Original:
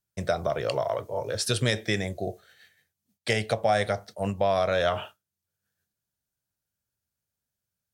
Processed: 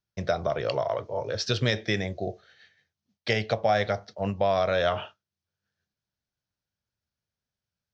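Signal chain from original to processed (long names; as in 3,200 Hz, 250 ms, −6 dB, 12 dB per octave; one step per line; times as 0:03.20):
Butterworth low-pass 6,000 Hz 48 dB per octave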